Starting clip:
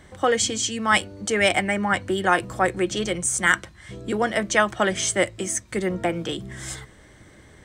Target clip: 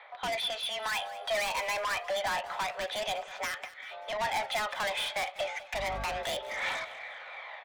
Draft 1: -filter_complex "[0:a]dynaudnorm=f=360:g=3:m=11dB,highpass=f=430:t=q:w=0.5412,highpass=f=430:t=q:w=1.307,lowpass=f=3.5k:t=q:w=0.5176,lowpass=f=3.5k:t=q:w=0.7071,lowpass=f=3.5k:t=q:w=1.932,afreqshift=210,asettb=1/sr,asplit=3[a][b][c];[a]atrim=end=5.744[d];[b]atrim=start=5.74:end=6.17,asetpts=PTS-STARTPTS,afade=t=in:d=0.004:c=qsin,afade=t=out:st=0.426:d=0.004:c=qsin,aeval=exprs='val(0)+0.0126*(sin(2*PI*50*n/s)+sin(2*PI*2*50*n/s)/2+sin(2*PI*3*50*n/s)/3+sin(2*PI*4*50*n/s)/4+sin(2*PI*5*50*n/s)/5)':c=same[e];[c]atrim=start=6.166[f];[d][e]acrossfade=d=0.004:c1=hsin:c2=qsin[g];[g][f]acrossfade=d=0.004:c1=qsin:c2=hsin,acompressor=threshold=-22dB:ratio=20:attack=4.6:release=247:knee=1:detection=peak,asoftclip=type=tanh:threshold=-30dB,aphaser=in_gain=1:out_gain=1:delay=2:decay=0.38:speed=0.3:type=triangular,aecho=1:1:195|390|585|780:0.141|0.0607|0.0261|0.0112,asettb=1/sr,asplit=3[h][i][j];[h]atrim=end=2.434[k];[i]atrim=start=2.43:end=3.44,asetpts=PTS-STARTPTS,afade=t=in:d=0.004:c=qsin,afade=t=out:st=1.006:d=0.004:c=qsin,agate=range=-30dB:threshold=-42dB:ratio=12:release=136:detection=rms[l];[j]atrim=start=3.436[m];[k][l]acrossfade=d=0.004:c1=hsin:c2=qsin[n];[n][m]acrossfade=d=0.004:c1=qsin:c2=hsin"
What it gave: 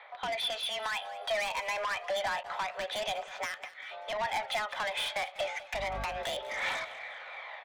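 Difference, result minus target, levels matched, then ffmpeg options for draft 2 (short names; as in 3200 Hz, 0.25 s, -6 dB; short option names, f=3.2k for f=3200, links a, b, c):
compressor: peak gain reduction +7 dB
-filter_complex "[0:a]dynaudnorm=f=360:g=3:m=11dB,highpass=f=430:t=q:w=0.5412,highpass=f=430:t=q:w=1.307,lowpass=f=3.5k:t=q:w=0.5176,lowpass=f=3.5k:t=q:w=0.7071,lowpass=f=3.5k:t=q:w=1.932,afreqshift=210,asettb=1/sr,asplit=3[a][b][c];[a]atrim=end=5.744[d];[b]atrim=start=5.74:end=6.17,asetpts=PTS-STARTPTS,afade=t=in:d=0.004:c=qsin,afade=t=out:st=0.426:d=0.004:c=qsin,aeval=exprs='val(0)+0.0126*(sin(2*PI*50*n/s)+sin(2*PI*2*50*n/s)/2+sin(2*PI*3*50*n/s)/3+sin(2*PI*4*50*n/s)/4+sin(2*PI*5*50*n/s)/5)':c=same[e];[c]atrim=start=6.166[f];[d][e]acrossfade=d=0.004:c1=hsin:c2=qsin[g];[g][f]acrossfade=d=0.004:c1=qsin:c2=hsin,acompressor=threshold=-14.5dB:ratio=20:attack=4.6:release=247:knee=1:detection=peak,asoftclip=type=tanh:threshold=-30dB,aphaser=in_gain=1:out_gain=1:delay=2:decay=0.38:speed=0.3:type=triangular,aecho=1:1:195|390|585|780:0.141|0.0607|0.0261|0.0112,asettb=1/sr,asplit=3[h][i][j];[h]atrim=end=2.434[k];[i]atrim=start=2.43:end=3.44,asetpts=PTS-STARTPTS,afade=t=in:d=0.004:c=qsin,afade=t=out:st=1.006:d=0.004:c=qsin,agate=range=-30dB:threshold=-42dB:ratio=12:release=136:detection=rms[l];[j]atrim=start=3.436[m];[k][l]acrossfade=d=0.004:c1=hsin:c2=qsin[n];[n][m]acrossfade=d=0.004:c1=qsin:c2=hsin"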